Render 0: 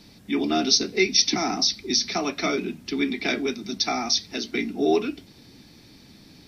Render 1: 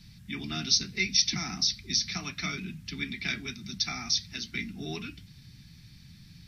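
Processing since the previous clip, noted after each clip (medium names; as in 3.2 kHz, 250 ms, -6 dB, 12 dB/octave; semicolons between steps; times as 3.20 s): FFT filter 160 Hz 0 dB, 270 Hz -20 dB, 530 Hz -29 dB, 1.7 kHz -9 dB; trim +4.5 dB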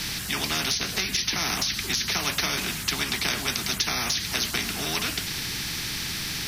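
compression, threshold -30 dBFS, peak gain reduction 11.5 dB; spectrum-flattening compressor 4:1; trim +8.5 dB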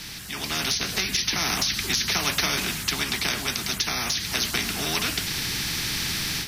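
level rider gain up to 10.5 dB; trim -7 dB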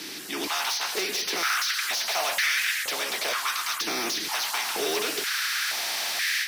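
hard clipper -25.5 dBFS, distortion -9 dB; step-sequenced high-pass 2.1 Hz 330–1800 Hz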